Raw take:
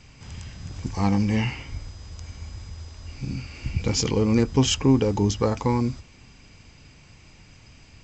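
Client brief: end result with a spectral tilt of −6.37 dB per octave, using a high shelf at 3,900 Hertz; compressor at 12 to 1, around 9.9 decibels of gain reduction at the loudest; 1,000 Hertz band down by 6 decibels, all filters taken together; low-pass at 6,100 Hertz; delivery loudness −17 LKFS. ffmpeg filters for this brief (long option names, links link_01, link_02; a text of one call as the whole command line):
ffmpeg -i in.wav -af "lowpass=6100,equalizer=frequency=1000:width_type=o:gain=-7,highshelf=frequency=3900:gain=-4,acompressor=threshold=-23dB:ratio=12,volume=14.5dB" out.wav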